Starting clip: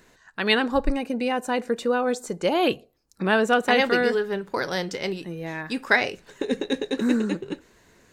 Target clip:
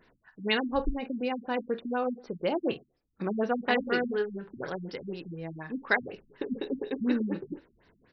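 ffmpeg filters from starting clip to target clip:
-af "aecho=1:1:24|50:0.237|0.211,afftfilt=real='re*lt(b*sr/1024,260*pow(6000/260,0.5+0.5*sin(2*PI*4.1*pts/sr)))':imag='im*lt(b*sr/1024,260*pow(6000/260,0.5+0.5*sin(2*PI*4.1*pts/sr)))':win_size=1024:overlap=0.75,volume=-6dB"

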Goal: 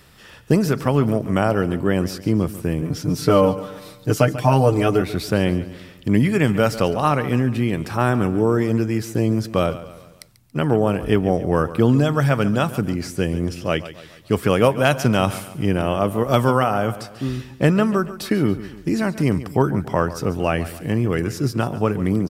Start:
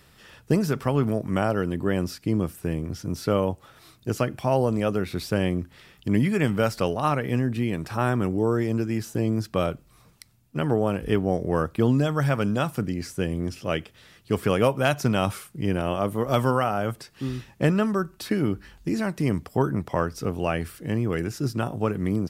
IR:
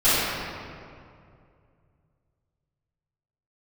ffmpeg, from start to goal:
-filter_complex "[0:a]asettb=1/sr,asplit=3[a][b][c];[a]atrim=end=2.824[d];[b]atrim=start=2.82:end=5.02,asetpts=PTS-STARTPTS,afade=t=in:d=0.004:c=qsin,afade=t=out:st=2.196:d=0.004:c=qsin,aecho=1:1:6.7:1,atrim=end_sample=97020[e];[c]atrim=start=5.016[f];[d][e]acrossfade=d=0.004:c1=hsin:c2=qsin[g];[g][f]acrossfade=d=0.004:c1=qsin:c2=hsin,aecho=1:1:141|282|423|564:0.178|0.0818|0.0376|0.0173,volume=5dB"

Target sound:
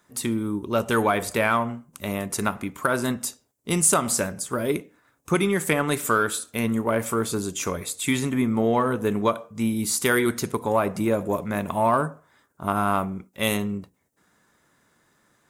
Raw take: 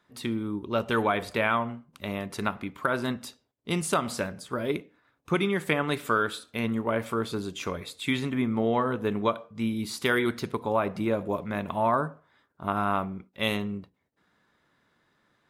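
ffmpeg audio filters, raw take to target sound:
-filter_complex "[0:a]highshelf=f=5.4k:t=q:w=1.5:g=10,asplit=2[a][b];[b]asoftclip=type=tanh:threshold=-23.5dB,volume=-10.5dB[c];[a][c]amix=inputs=2:normalize=0,volume=2.5dB"

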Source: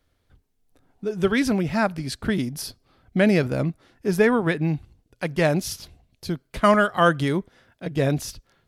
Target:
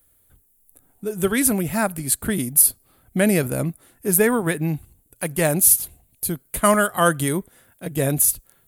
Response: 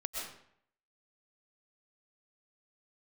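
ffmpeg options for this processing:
-af "aexciter=amount=14.3:drive=5.6:freq=7.8k"

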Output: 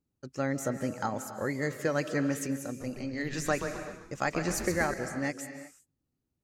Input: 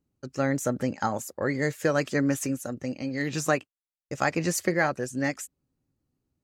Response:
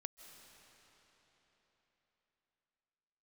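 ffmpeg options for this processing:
-filter_complex "[0:a]asettb=1/sr,asplit=3[a][b][c];[a]atrim=end=2.674[d];[b]atrim=start=2.67:end=4.94,asetpts=PTS-STARTPTS,afade=t=in:d=0.004:c=qsin,afade=t=out:st=2.266:d=0.004:c=qsin,asplit=6[e][f][g][h][i][j];[f]adelay=129,afreqshift=-130,volume=-7.5dB[k];[g]adelay=258,afreqshift=-260,volume=-14.8dB[l];[h]adelay=387,afreqshift=-390,volume=-22.2dB[m];[i]adelay=516,afreqshift=-520,volume=-29.5dB[n];[j]adelay=645,afreqshift=-650,volume=-36.8dB[o];[e][k][l][m][n][o]amix=inputs=6:normalize=0,atrim=end_sample=100107[p];[c]atrim=start=4.936[q];[d][p]acrossfade=d=0.004:c1=hsin:c2=qsin[r];[r][q]acrossfade=d=0.004:c1=qsin:c2=hsin[s];[1:a]atrim=start_sample=2205,afade=t=out:st=0.44:d=0.01,atrim=end_sample=19845[t];[s][t]afir=irnorm=-1:irlink=0"

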